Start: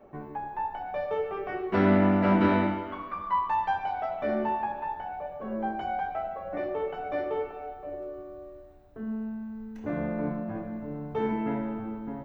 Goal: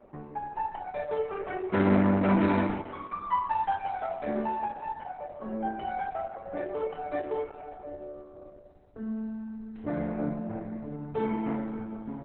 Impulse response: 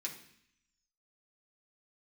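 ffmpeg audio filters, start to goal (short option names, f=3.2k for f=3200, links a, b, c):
-ar 48000 -c:a libopus -b:a 8k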